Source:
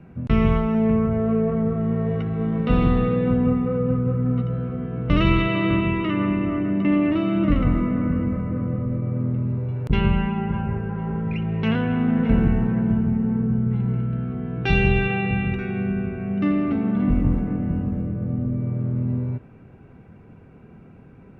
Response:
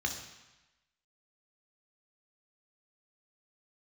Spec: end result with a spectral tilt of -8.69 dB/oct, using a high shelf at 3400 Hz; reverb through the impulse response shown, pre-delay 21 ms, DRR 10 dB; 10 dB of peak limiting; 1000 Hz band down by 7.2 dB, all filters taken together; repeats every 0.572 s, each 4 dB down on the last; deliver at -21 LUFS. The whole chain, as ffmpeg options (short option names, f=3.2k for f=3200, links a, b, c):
-filter_complex "[0:a]equalizer=f=1k:t=o:g=-9,highshelf=f=3.4k:g=-8.5,alimiter=limit=-16.5dB:level=0:latency=1,aecho=1:1:572|1144|1716|2288|2860|3432|4004|4576|5148:0.631|0.398|0.25|0.158|0.0994|0.0626|0.0394|0.0249|0.0157,asplit=2[a][b];[1:a]atrim=start_sample=2205,adelay=21[c];[b][c]afir=irnorm=-1:irlink=0,volume=-14.5dB[d];[a][d]amix=inputs=2:normalize=0,volume=2dB"